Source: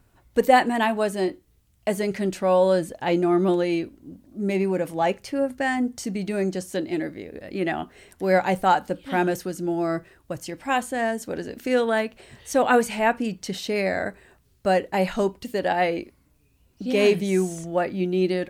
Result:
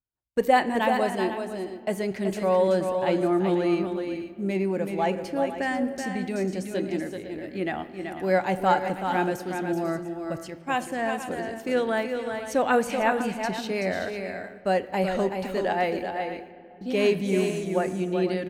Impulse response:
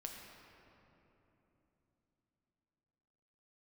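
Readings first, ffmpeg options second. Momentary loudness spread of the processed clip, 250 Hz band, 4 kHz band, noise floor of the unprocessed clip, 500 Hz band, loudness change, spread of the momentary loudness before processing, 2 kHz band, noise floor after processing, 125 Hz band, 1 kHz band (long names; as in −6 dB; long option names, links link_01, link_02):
9 LU, −2.0 dB, −3.0 dB, −62 dBFS, −2.0 dB, −2.5 dB, 12 LU, −2.5 dB, −45 dBFS, −2.0 dB, −2.0 dB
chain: -filter_complex "[0:a]aecho=1:1:380|496:0.473|0.251,agate=range=-33dB:threshold=-31dB:ratio=3:detection=peak,asplit=2[link_01][link_02];[1:a]atrim=start_sample=2205,asetrate=52920,aresample=44100,lowpass=5600[link_03];[link_02][link_03]afir=irnorm=-1:irlink=0,volume=-4.5dB[link_04];[link_01][link_04]amix=inputs=2:normalize=0,volume=-5.5dB"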